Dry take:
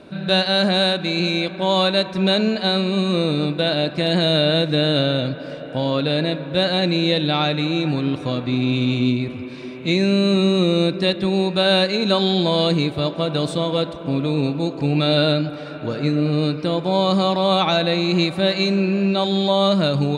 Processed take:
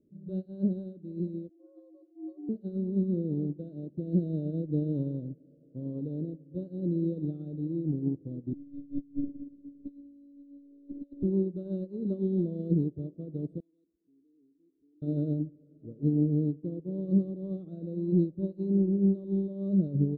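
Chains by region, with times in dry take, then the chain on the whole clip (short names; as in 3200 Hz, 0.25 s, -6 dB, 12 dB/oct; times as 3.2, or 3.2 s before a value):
1.49–2.49 spectral contrast raised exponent 2.9 + ring modulator 270 Hz + frequency shift +240 Hz
8.53–11.23 robotiser 282 Hz + negative-ratio compressor -25 dBFS, ratio -0.5 + low shelf 70 Hz +5.5 dB
13.6–15.02 pre-emphasis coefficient 0.9 + fixed phaser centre 550 Hz, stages 6
whole clip: inverse Chebyshev low-pass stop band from 810 Hz, stop band 40 dB; upward expander 2.5:1, over -30 dBFS; gain -2.5 dB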